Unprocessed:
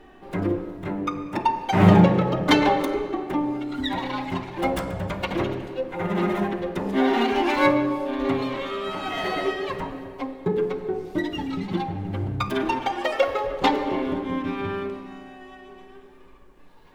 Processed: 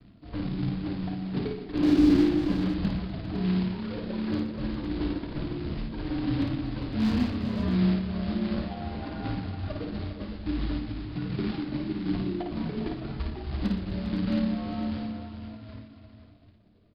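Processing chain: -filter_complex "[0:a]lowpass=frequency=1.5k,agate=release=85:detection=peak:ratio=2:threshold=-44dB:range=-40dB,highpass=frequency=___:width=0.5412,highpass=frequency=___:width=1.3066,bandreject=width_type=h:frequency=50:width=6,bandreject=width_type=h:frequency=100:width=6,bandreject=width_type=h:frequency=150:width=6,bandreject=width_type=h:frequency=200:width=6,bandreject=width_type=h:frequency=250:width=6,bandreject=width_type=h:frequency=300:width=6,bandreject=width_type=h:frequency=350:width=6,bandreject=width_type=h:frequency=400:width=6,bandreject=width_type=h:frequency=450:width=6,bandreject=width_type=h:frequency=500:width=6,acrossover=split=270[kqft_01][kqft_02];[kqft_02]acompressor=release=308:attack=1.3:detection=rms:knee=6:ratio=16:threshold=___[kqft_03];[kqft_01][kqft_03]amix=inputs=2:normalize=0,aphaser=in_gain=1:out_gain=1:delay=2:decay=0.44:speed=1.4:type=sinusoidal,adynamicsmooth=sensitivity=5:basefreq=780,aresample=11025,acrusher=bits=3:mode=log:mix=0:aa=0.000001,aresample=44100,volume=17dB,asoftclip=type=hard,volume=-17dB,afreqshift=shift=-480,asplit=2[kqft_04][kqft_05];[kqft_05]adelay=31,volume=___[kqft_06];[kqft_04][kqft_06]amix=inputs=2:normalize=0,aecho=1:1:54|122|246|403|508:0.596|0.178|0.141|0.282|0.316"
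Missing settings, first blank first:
160, 160, -32dB, -14dB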